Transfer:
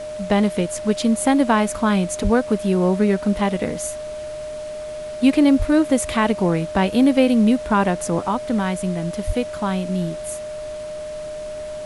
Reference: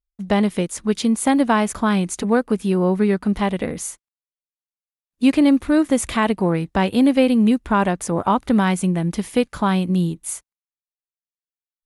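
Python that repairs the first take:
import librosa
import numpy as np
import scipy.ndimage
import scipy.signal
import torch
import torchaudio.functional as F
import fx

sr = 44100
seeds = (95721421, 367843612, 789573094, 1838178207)

y = fx.notch(x, sr, hz=610.0, q=30.0)
y = fx.highpass(y, sr, hz=140.0, slope=24, at=(2.23, 2.35), fade=0.02)
y = fx.highpass(y, sr, hz=140.0, slope=24, at=(5.58, 5.7), fade=0.02)
y = fx.highpass(y, sr, hz=140.0, slope=24, at=(9.26, 9.38), fade=0.02)
y = fx.noise_reduce(y, sr, print_start_s=4.68, print_end_s=5.18, reduce_db=30.0)
y = fx.gain(y, sr, db=fx.steps((0.0, 0.0), (8.2, 4.5)))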